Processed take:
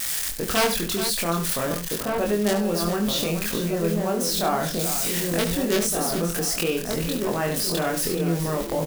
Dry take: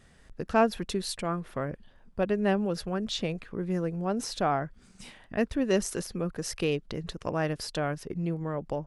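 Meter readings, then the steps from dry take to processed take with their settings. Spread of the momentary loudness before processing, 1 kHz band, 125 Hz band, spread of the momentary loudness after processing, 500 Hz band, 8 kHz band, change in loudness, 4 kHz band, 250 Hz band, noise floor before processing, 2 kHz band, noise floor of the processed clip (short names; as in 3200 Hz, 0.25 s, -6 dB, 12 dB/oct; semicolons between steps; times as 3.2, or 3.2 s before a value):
10 LU, +4.5 dB, +5.0 dB, 3 LU, +5.5 dB, +15.0 dB, +7.0 dB, +11.0 dB, +5.0 dB, -58 dBFS, +7.0 dB, -30 dBFS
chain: switching spikes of -29 dBFS; bell 87 Hz -7 dB 2 oct; wrapped overs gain 16 dB; outdoor echo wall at 260 m, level -6 dB; in parallel at +3 dB: negative-ratio compressor -38 dBFS, ratio -1; on the sum: doubler 24 ms -2.5 dB; on a send: tapped delay 71/426 ms -10/-10.5 dB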